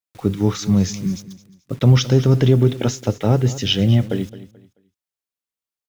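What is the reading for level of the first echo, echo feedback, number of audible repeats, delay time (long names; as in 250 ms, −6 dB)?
−16.0 dB, 28%, 2, 217 ms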